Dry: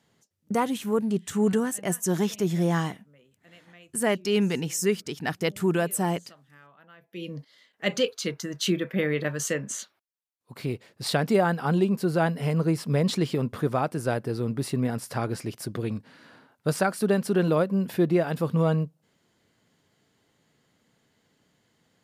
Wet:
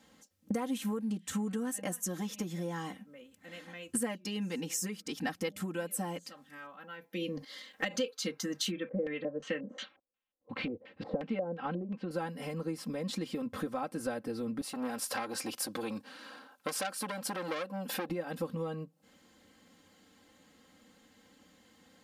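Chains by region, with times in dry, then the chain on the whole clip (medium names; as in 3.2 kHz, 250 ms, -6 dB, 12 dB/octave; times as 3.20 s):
7.37–7.96 s: compression 3:1, threshold -32 dBFS + transient shaper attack +10 dB, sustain +6 dB
8.71–12.11 s: de-esser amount 30% + treble shelf 3.7 kHz -10 dB + LFO low-pass square 2.8 Hz 530–2900 Hz
14.61–18.10 s: high-pass 650 Hz 6 dB/octave + peaking EQ 2 kHz -6.5 dB 0.28 oct + transformer saturation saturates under 2.7 kHz
whole clip: compression 16:1, threshold -37 dBFS; comb 3.8 ms, depth 98%; trim +3 dB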